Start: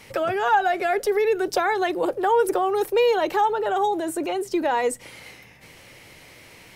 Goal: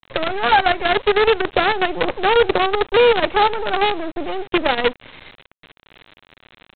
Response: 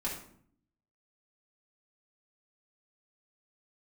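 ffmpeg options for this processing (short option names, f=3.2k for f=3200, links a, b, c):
-af "bandreject=f=950:w=19,aresample=8000,acrusher=bits=4:dc=4:mix=0:aa=0.000001,aresample=44100,volume=4.5dB"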